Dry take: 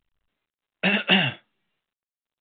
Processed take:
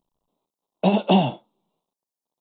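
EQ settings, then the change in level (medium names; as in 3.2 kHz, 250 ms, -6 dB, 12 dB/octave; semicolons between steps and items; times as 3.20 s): FFT filter 100 Hz 0 dB, 160 Hz +12 dB, 990 Hz +15 dB, 1.7 kHz -19 dB, 4.8 kHz +11 dB; -6.0 dB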